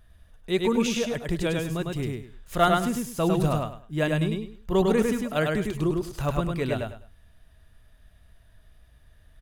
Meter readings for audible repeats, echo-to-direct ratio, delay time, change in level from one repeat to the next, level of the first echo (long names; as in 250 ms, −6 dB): 3, −2.5 dB, 102 ms, −12.5 dB, −3.0 dB